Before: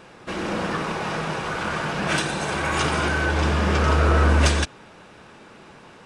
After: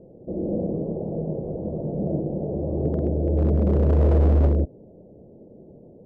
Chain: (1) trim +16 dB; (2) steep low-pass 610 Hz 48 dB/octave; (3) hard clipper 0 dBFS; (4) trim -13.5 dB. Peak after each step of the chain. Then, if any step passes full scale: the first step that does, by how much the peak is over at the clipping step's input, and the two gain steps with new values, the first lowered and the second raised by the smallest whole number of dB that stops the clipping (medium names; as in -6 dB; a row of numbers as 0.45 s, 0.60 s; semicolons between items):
+11.0 dBFS, +8.0 dBFS, 0.0 dBFS, -13.5 dBFS; step 1, 8.0 dB; step 1 +8 dB, step 4 -5.5 dB